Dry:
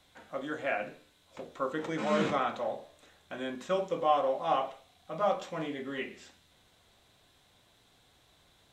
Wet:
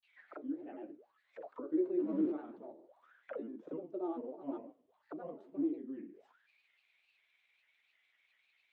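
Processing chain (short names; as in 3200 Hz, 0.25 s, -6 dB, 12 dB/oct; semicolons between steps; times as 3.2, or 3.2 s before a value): auto-wah 310–2600 Hz, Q 12, down, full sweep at -35.5 dBFS; grains, spray 29 ms, pitch spread up and down by 3 st; gain +8 dB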